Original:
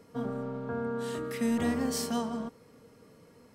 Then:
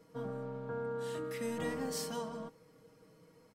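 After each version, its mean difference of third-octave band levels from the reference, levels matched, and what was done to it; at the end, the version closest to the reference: 2.0 dB: comb 6.3 ms, depth 61%; gain -7 dB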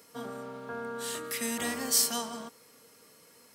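7.0 dB: tilt +4 dB/oct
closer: first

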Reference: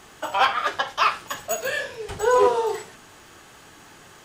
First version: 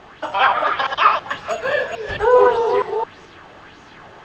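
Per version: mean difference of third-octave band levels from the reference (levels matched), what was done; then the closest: 6.0 dB: reverse delay 0.217 s, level -4 dB; in parallel at -1 dB: limiter -15 dBFS, peak gain reduction 10.5 dB; on the sum: air absorption 230 m; LFO bell 1.7 Hz 570–6600 Hz +8 dB; gain -1 dB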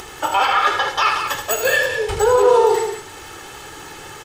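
4.5 dB: comb 2.3 ms, depth 56%; upward compressor, threshold -39 dBFS; limiter -15 dBFS, peak gain reduction 10 dB; on a send: loudspeakers at several distances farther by 27 m -8 dB, 62 m -8 dB; on the sum: gain +7.5 dB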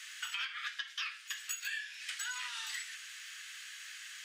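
16.5 dB: steep high-pass 1700 Hz 36 dB/oct; high shelf 9700 Hz -10.5 dB; compressor 10:1, threshold -42 dBFS, peak gain reduction 20 dB; gain +5.5 dB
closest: second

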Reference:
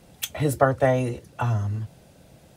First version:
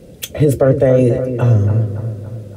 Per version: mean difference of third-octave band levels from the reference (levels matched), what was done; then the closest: 7.0 dB: resonant low shelf 640 Hz +8 dB, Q 3; limiter -7.5 dBFS, peak gain reduction 8 dB; on a send: analogue delay 0.283 s, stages 4096, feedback 51%, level -9 dB; on the sum: gain +4 dB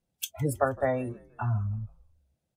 9.0 dB: spectral noise reduction 25 dB; tone controls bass +3 dB, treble +3 dB; frequency-shifting echo 0.159 s, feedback 46%, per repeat -59 Hz, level -23 dB; gain -6.5 dB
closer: first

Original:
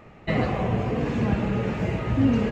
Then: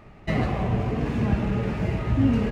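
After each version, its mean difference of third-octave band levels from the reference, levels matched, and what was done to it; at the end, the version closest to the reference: 1.5 dB: low shelf 64 Hz +11.5 dB; notch 500 Hz, Q 12; running maximum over 3 samples; gain -1.5 dB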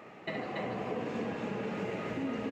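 5.0 dB: HPF 250 Hz 12 dB/oct; compressor 6:1, threshold -36 dBFS, peak gain reduction 15.5 dB; loudspeakers at several distances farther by 23 m -9 dB, 97 m -2 dB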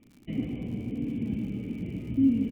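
10.0 dB: vocal tract filter i; feedback echo 0.147 s, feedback 21%, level -7.5 dB; crackle 100/s -45 dBFS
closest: first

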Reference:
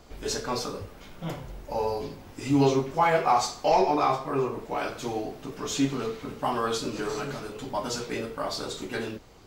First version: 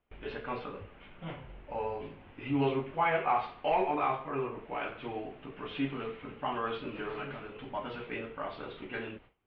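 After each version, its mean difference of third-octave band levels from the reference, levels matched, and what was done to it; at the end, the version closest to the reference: 7.0 dB: gate with hold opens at -38 dBFS; steep low-pass 3000 Hz 48 dB/oct; high shelf 2200 Hz +11.5 dB; gain -8 dB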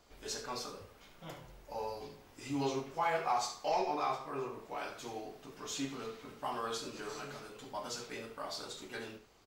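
3.0 dB: low shelf 440 Hz -8 dB; de-hum 84.84 Hz, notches 35; on a send: echo 70 ms -12.5 dB; on the sum: gain -8.5 dB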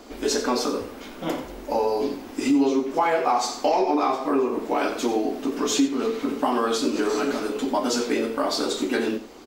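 4.5 dB: resonant low shelf 190 Hz -10.5 dB, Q 3; compressor 4:1, threshold -27 dBFS, peak gain reduction 12.5 dB; on a send: echo 89 ms -13.5 dB; on the sum: gain +7.5 dB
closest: second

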